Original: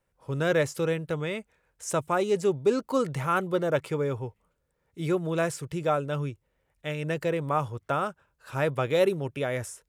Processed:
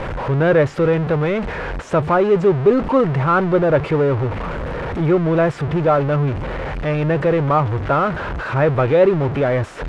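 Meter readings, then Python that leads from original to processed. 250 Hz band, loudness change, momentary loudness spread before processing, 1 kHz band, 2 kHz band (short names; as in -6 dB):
+12.0 dB, +10.5 dB, 11 LU, +10.5 dB, +9.5 dB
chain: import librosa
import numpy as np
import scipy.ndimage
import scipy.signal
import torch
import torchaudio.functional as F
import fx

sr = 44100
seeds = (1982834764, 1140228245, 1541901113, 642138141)

y = x + 0.5 * 10.0 ** (-25.5 / 20.0) * np.sign(x)
y = scipy.signal.sosfilt(scipy.signal.butter(2, 1800.0, 'lowpass', fs=sr, output='sos'), y)
y = F.gain(torch.from_numpy(y), 8.0).numpy()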